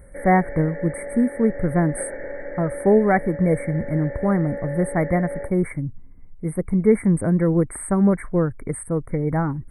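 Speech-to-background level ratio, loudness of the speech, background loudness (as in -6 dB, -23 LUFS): 11.5 dB, -21.5 LUFS, -33.0 LUFS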